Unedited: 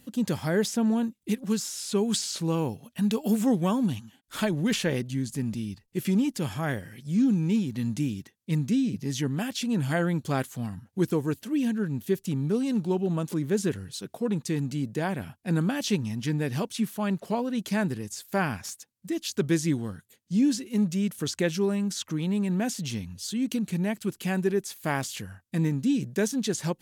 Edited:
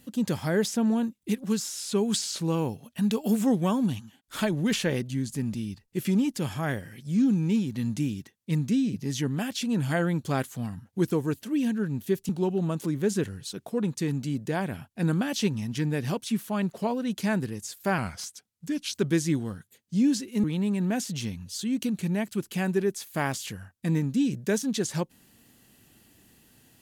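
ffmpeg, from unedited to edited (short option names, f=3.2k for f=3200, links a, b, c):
-filter_complex "[0:a]asplit=5[a][b][c][d][e];[a]atrim=end=12.292[f];[b]atrim=start=12.768:end=18.464[g];[c]atrim=start=18.46:end=19.33,asetpts=PTS-STARTPTS,asetrate=39690,aresample=44100[h];[d]atrim=start=19.326:end=20.822[i];[e]atrim=start=22.128[j];[f][g]acrossfade=d=0.004:c1=hsin:c2=hsin[k];[k][h]acrossfade=d=0.004:c1=hsin:c2=hsin[l];[l][i]acrossfade=d=0.004:c1=hsin:c2=hsin[m];[m][j]acrossfade=d=0.004:c1=hsin:c2=hsin"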